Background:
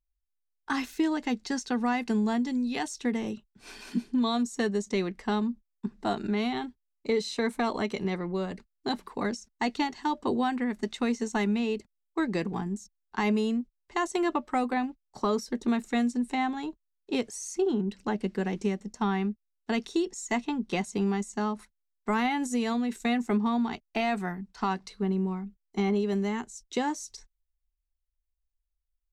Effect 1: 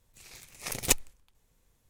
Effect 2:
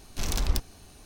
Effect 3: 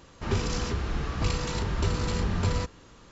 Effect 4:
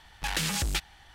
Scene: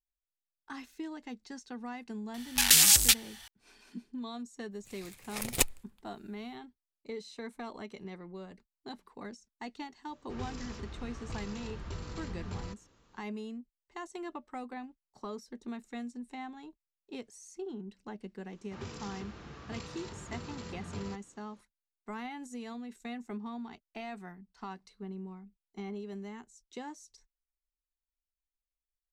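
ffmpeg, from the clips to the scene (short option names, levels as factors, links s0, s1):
-filter_complex "[3:a]asplit=2[s0][s1];[0:a]volume=0.2[s2];[4:a]crystalizer=i=10:c=0[s3];[1:a]equalizer=f=6000:w=3.8:g=-5.5[s4];[s1]highpass=100[s5];[s3]atrim=end=1.14,asetpts=PTS-STARTPTS,volume=0.447,afade=t=in:d=0.004:c=hsin,afade=t=out:st=1.136:d=0.004:c=hsin,adelay=2340[s6];[s4]atrim=end=1.89,asetpts=PTS-STARTPTS,volume=0.841,afade=t=in:d=0.05,afade=t=out:st=1.84:d=0.05,adelay=4700[s7];[s0]atrim=end=3.11,asetpts=PTS-STARTPTS,volume=0.2,afade=t=in:d=0.004:c=hsin,afade=t=out:st=3.106:d=0.004:c=hsin,adelay=10080[s8];[s5]atrim=end=3.11,asetpts=PTS-STARTPTS,volume=0.211,afade=t=in:d=0.004:c=hsin,afade=t=out:st=3.106:d=0.004:c=hsin,adelay=18500[s9];[s2][s6][s7][s8][s9]amix=inputs=5:normalize=0"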